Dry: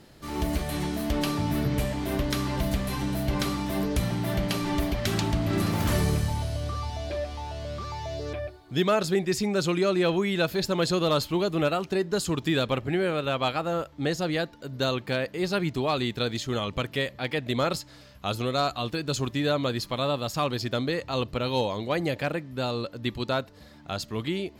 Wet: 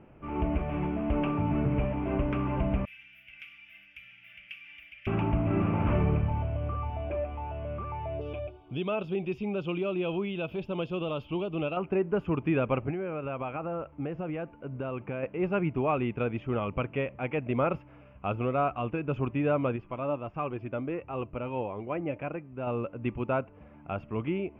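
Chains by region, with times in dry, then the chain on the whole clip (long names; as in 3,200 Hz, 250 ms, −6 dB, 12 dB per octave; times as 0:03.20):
0:02.85–0:05.07: inverse Chebyshev high-pass filter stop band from 1,100 Hz + high-shelf EQ 8,900 Hz +11.5 dB
0:08.21–0:11.77: high shelf with overshoot 2,600 Hz +11 dB, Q 3 + downward compressor 1.5 to 1, threshold −32 dBFS
0:12.90–0:15.23: downward compressor, threshold −28 dBFS + high-frequency loss of the air 90 metres
0:19.76–0:22.67: flanger 1.5 Hz, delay 2.4 ms, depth 1.1 ms, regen +66% + high-frequency loss of the air 84 metres
whole clip: elliptic low-pass filter 2,600 Hz, stop band 40 dB; parametric band 1,800 Hz −11 dB 0.41 octaves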